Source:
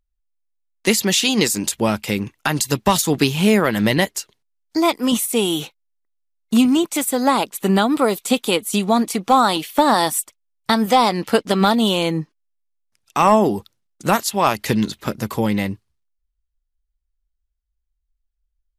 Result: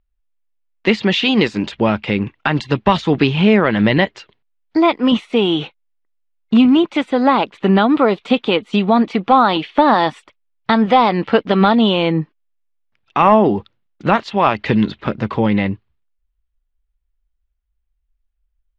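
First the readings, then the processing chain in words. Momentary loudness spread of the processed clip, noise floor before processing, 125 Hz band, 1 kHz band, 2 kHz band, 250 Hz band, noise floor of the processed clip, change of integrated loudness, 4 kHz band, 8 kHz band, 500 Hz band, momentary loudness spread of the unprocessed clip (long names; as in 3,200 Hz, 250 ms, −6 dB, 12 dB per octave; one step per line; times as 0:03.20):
9 LU, −75 dBFS, +4.0 dB, +3.0 dB, +3.0 dB, +4.0 dB, −70 dBFS, +3.0 dB, 0.0 dB, below −20 dB, +3.5 dB, 10 LU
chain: low-pass filter 3,300 Hz 24 dB per octave
in parallel at −2.5 dB: brickwall limiter −11.5 dBFS, peak gain reduction 7.5 dB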